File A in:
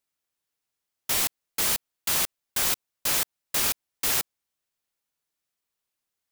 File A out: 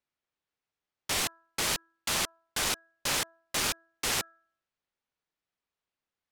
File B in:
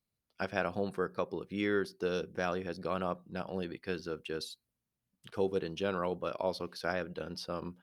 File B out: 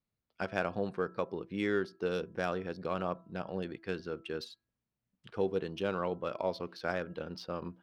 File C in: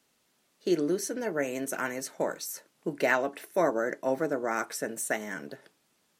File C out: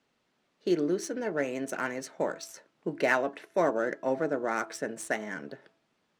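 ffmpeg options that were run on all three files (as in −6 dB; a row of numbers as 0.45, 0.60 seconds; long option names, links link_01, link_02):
-af "adynamicsmooth=sensitivity=6.5:basefreq=4100,bandreject=frequency=330.9:width_type=h:width=4,bandreject=frequency=661.8:width_type=h:width=4,bandreject=frequency=992.7:width_type=h:width=4,bandreject=frequency=1323.6:width_type=h:width=4,bandreject=frequency=1654.5:width_type=h:width=4"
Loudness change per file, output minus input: −5.5, 0.0, −0.5 LU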